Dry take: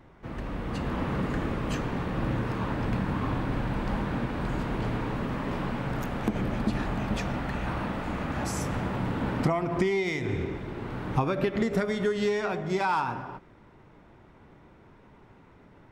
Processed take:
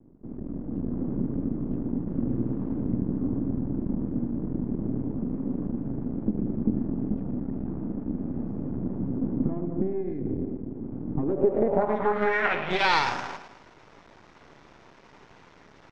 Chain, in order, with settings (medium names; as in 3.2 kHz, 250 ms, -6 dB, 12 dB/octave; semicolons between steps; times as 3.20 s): feedback delay 110 ms, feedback 48%, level -11 dB; half-wave rectifier; bass shelf 310 Hz -9.5 dB; low-pass sweep 260 Hz -> 6 kHz, 11.15–13.15 s; 2.07–2.96 s: treble shelf 2.6 kHz +9.5 dB; trim +8.5 dB